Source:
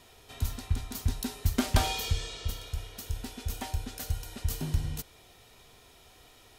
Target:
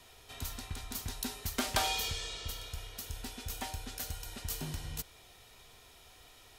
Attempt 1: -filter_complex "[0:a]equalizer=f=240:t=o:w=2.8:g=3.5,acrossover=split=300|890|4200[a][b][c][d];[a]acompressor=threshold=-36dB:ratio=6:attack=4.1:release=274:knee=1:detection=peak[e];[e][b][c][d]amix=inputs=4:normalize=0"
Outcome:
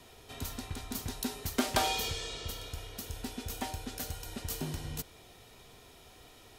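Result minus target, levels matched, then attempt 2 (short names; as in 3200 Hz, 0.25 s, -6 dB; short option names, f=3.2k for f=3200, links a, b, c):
250 Hz band +5.0 dB
-filter_complex "[0:a]equalizer=f=240:t=o:w=2.8:g=-5,acrossover=split=300|890|4200[a][b][c][d];[a]acompressor=threshold=-36dB:ratio=6:attack=4.1:release=274:knee=1:detection=peak[e];[e][b][c][d]amix=inputs=4:normalize=0"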